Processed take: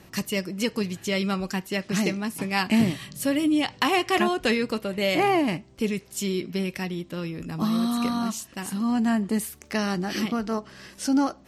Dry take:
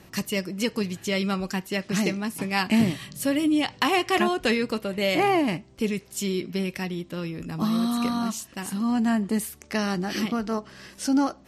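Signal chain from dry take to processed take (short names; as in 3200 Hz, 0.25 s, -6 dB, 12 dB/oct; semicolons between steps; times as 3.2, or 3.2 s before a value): 9.39–9.93 crackle 140/s -50 dBFS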